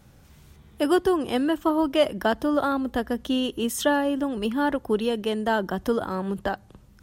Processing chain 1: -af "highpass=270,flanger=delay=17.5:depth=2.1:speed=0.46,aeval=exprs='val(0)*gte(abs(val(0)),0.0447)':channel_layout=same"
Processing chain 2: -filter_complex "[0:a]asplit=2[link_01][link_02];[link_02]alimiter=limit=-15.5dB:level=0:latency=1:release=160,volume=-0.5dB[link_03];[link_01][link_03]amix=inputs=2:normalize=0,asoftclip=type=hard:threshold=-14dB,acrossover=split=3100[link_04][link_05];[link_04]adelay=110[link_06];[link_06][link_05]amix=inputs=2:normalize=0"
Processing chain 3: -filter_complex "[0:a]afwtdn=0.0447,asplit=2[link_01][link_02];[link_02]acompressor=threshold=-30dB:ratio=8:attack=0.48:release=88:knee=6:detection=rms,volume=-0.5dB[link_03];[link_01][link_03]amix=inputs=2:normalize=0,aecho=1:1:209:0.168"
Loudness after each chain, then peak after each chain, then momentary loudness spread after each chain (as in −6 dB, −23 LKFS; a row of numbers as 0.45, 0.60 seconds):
−30.0, −21.5, −23.5 LKFS; −11.5, −8.5, −8.0 dBFS; 9, 4, 5 LU